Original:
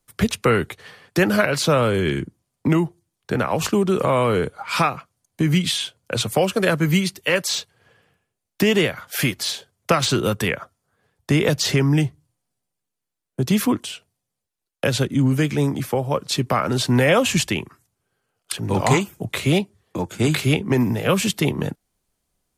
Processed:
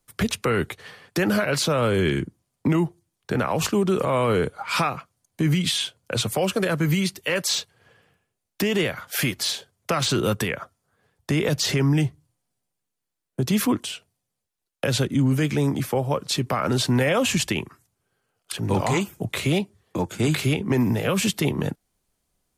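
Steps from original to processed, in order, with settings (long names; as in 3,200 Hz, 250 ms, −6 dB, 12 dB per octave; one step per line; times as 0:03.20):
brickwall limiter −13 dBFS, peak gain reduction 10 dB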